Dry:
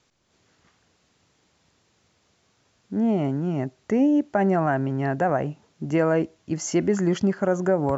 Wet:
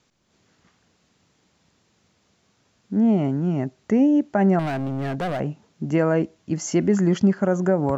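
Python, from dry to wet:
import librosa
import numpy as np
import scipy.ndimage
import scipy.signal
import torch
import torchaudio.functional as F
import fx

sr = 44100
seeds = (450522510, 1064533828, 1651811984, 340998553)

y = fx.peak_eq(x, sr, hz=200.0, db=5.0, octaves=0.85)
y = fx.clip_hard(y, sr, threshold_db=-23.0, at=(4.59, 5.4))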